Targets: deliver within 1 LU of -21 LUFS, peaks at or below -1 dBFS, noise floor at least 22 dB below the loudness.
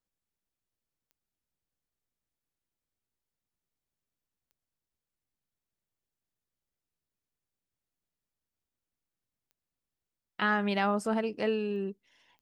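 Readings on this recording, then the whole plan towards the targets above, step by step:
clicks found 5; loudness -30.5 LUFS; peak level -16.0 dBFS; loudness target -21.0 LUFS
-> de-click; trim +9.5 dB

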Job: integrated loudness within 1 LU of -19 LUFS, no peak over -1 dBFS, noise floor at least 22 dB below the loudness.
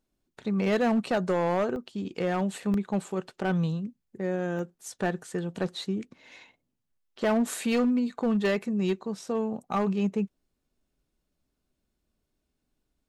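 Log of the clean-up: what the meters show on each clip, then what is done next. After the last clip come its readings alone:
clipped samples 1.4%; clipping level -20.0 dBFS; dropouts 3; longest dropout 1.4 ms; loudness -29.0 LUFS; peak level -20.0 dBFS; loudness target -19.0 LUFS
-> clip repair -20 dBFS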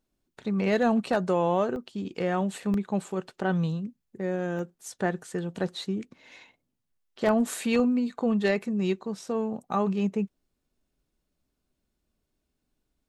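clipped samples 0.0%; dropouts 3; longest dropout 1.4 ms
-> interpolate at 1.76/2.74/4.59 s, 1.4 ms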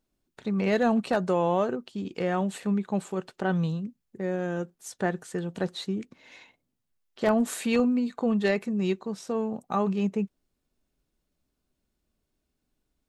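dropouts 0; loudness -28.5 LUFS; peak level -11.5 dBFS; loudness target -19.0 LUFS
-> trim +9.5 dB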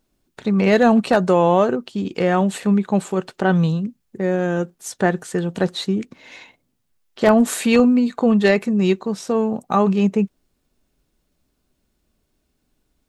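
loudness -19.0 LUFS; peak level -2.0 dBFS; noise floor -71 dBFS

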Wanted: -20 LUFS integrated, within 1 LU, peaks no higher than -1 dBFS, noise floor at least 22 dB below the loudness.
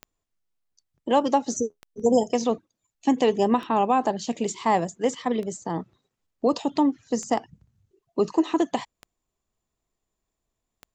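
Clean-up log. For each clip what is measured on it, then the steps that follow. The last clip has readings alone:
clicks found 7; loudness -25.0 LUFS; peak level -8.5 dBFS; loudness target -20.0 LUFS
-> de-click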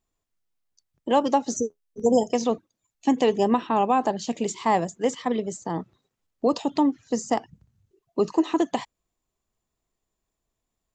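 clicks found 0; loudness -25.0 LUFS; peak level -8.5 dBFS; loudness target -20.0 LUFS
-> trim +5 dB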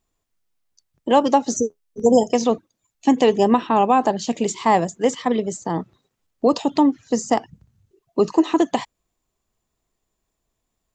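loudness -20.0 LUFS; peak level -3.5 dBFS; noise floor -78 dBFS

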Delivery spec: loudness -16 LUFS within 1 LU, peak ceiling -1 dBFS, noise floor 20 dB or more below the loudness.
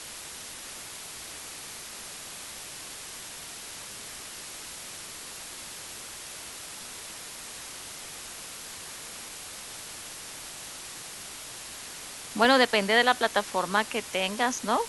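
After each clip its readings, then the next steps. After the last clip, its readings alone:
dropouts 1; longest dropout 1.9 ms; noise floor -42 dBFS; noise floor target -52 dBFS; loudness -31.5 LUFS; peak level -6.5 dBFS; loudness target -16.0 LUFS
-> interpolate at 12.45 s, 1.9 ms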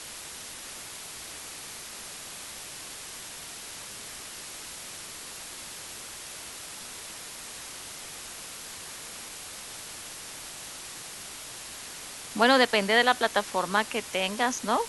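dropouts 0; noise floor -42 dBFS; noise floor target -52 dBFS
-> noise reduction 10 dB, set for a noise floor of -42 dBFS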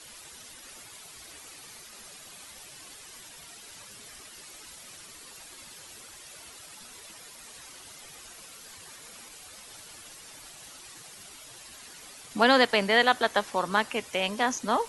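noise floor -48 dBFS; loudness -24.5 LUFS; peak level -6.5 dBFS; loudness target -16.0 LUFS
-> trim +8.5 dB; peak limiter -1 dBFS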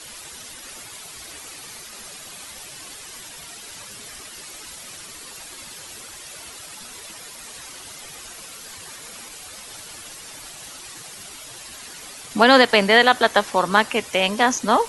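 loudness -16.5 LUFS; peak level -1.0 dBFS; noise floor -40 dBFS

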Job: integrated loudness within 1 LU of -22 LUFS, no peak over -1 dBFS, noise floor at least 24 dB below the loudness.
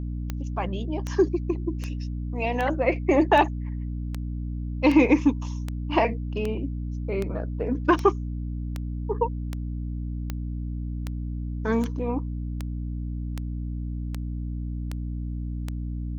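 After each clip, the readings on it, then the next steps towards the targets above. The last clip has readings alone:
clicks found 21; hum 60 Hz; highest harmonic 300 Hz; hum level -28 dBFS; loudness -27.5 LUFS; peak level -6.5 dBFS; loudness target -22.0 LUFS
-> de-click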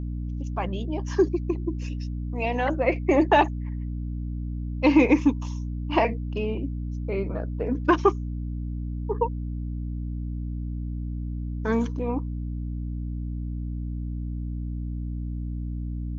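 clicks found 0; hum 60 Hz; highest harmonic 300 Hz; hum level -28 dBFS
-> de-hum 60 Hz, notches 5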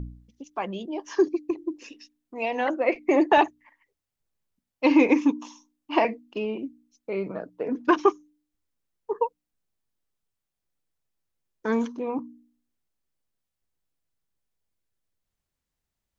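hum not found; loudness -25.5 LUFS; peak level -7.5 dBFS; loudness target -22.0 LUFS
-> trim +3.5 dB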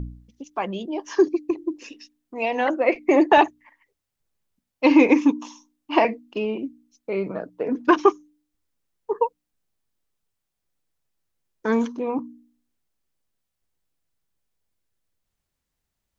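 loudness -22.0 LUFS; peak level -4.0 dBFS; noise floor -81 dBFS

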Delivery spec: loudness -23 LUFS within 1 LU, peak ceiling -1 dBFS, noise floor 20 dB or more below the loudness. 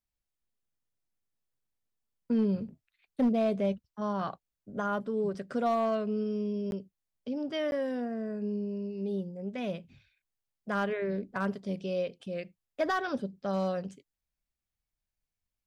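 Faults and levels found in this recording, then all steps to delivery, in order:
clipped samples 0.3%; clipping level -21.0 dBFS; dropouts 2; longest dropout 11 ms; loudness -32.5 LUFS; peak level -21.0 dBFS; loudness target -23.0 LUFS
-> clip repair -21 dBFS; interpolate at 6.71/7.71 s, 11 ms; trim +9.5 dB

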